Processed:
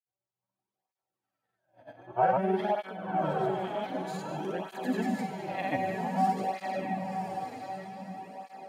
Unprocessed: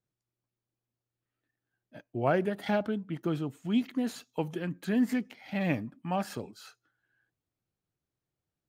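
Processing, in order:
peak hold with a rise ahead of every peak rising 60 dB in 0.37 s
parametric band 790 Hz +14.5 dB 1.1 octaves
automatic gain control gain up to 8.5 dB
tuned comb filter 190 Hz, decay 1.4 s, mix 90%
granular cloud, pitch spread up and down by 0 semitones
feedback delay with all-pass diffusion 1,038 ms, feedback 40%, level −4 dB
through-zero flanger with one copy inverted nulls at 0.53 Hz, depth 5.5 ms
level +8 dB

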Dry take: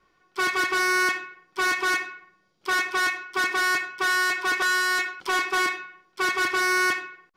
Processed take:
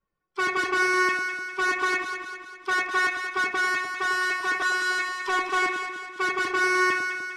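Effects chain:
spectral dynamics exaggerated over time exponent 1.5
low-pass filter 8,100 Hz 12 dB per octave
parametric band 4,500 Hz −4 dB 1.1 octaves
delay that swaps between a low-pass and a high-pass 100 ms, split 1,000 Hz, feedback 72%, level −4 dB
speech leveller within 3 dB 2 s

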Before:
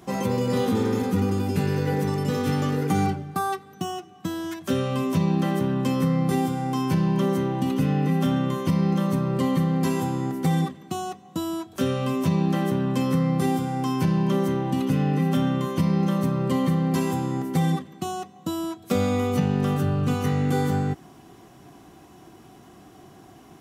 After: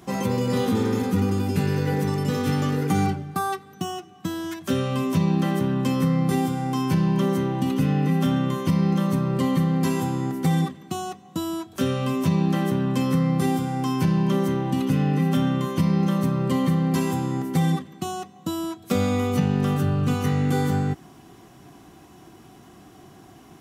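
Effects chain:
parametric band 570 Hz −2.5 dB 1.5 octaves
level +1.5 dB

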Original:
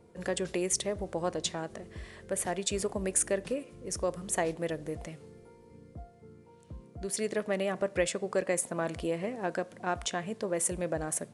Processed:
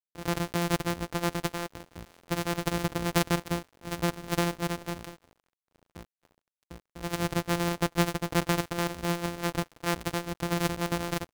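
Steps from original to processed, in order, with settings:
samples sorted by size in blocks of 256 samples
dead-zone distortion −46.5 dBFS
level +3.5 dB

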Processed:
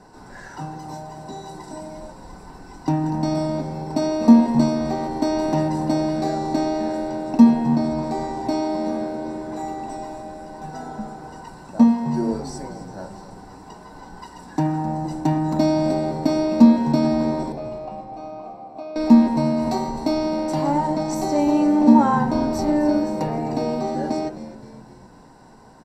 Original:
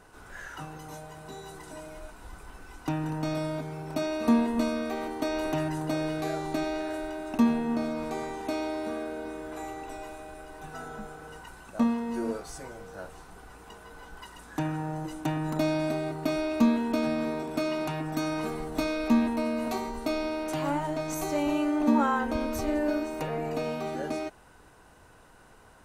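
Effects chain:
0:17.52–0:18.96: formant filter a
echo with shifted repeats 260 ms, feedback 56%, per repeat −87 Hz, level −14.5 dB
convolution reverb RT60 0.40 s, pre-delay 3 ms, DRR 10 dB
level −1 dB

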